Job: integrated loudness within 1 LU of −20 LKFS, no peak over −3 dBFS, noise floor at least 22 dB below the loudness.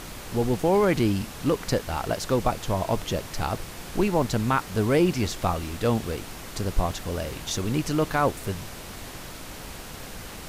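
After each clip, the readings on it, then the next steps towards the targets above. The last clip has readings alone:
number of dropouts 5; longest dropout 3.1 ms; background noise floor −40 dBFS; target noise floor −49 dBFS; integrated loudness −26.5 LKFS; sample peak −10.5 dBFS; target loudness −20.0 LKFS
→ repair the gap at 0:01.79/0:04.22/0:06.17/0:07.57/0:08.44, 3.1 ms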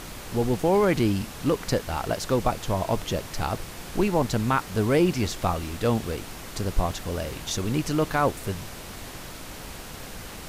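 number of dropouts 0; background noise floor −40 dBFS; target noise floor −49 dBFS
→ noise reduction from a noise print 9 dB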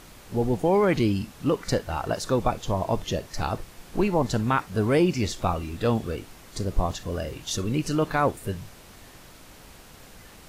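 background noise floor −49 dBFS; integrated loudness −26.5 LKFS; sample peak −11.0 dBFS; target loudness −20.0 LKFS
→ level +6.5 dB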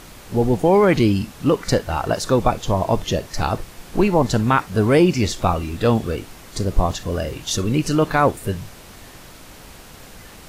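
integrated loudness −20.0 LKFS; sample peak −4.5 dBFS; background noise floor −42 dBFS

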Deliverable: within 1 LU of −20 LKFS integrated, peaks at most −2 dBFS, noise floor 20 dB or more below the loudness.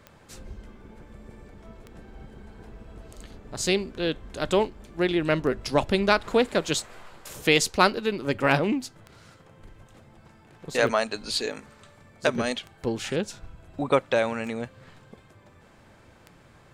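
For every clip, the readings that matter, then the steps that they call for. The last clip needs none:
number of clicks 10; integrated loudness −25.5 LKFS; sample peak −6.5 dBFS; target loudness −20.0 LKFS
→ click removal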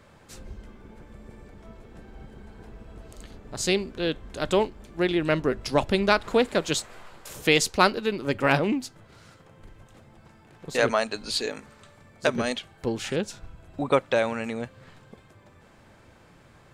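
number of clicks 0; integrated loudness −25.5 LKFS; sample peak −6.5 dBFS; target loudness −20.0 LKFS
→ level +5.5 dB
brickwall limiter −2 dBFS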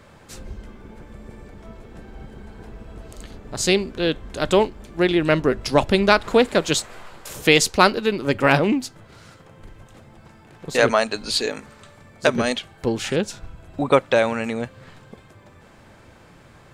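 integrated loudness −20.5 LKFS; sample peak −2.0 dBFS; background noise floor −49 dBFS

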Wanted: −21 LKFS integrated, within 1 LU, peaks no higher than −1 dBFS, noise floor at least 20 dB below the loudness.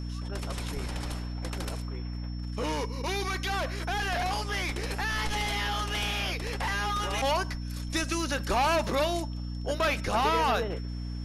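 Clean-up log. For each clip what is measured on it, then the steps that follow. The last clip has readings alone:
mains hum 60 Hz; hum harmonics up to 300 Hz; level of the hum −32 dBFS; interfering tone 5,400 Hz; level of the tone −50 dBFS; integrated loudness −30.0 LKFS; sample peak −16.0 dBFS; target loudness −21.0 LKFS
→ hum removal 60 Hz, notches 5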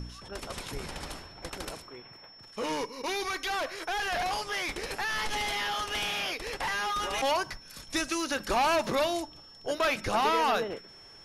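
mains hum none found; interfering tone 5,400 Hz; level of the tone −50 dBFS
→ notch filter 5,400 Hz, Q 30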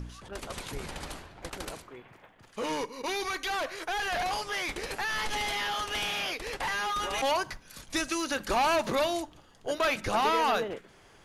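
interfering tone none found; integrated loudness −30.5 LKFS; sample peak −17.5 dBFS; target loudness −21.0 LKFS
→ level +9.5 dB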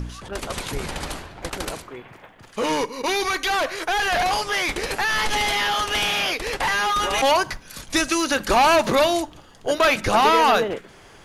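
integrated loudness −21.0 LKFS; sample peak −8.0 dBFS; background noise floor −48 dBFS

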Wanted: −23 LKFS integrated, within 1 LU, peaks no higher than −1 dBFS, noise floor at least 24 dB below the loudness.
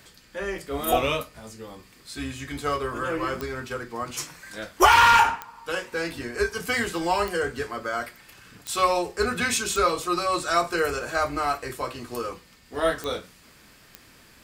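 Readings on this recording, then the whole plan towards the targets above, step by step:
number of clicks 8; integrated loudness −25.0 LKFS; sample peak −5.0 dBFS; target loudness −23.0 LKFS
→ click removal
level +2 dB

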